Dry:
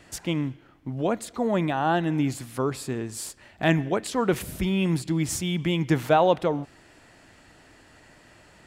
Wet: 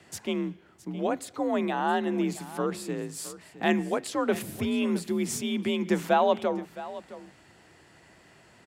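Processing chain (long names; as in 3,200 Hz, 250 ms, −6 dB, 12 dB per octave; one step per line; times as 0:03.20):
single-tap delay 665 ms −16 dB
frequency shifter +47 Hz
level −3 dB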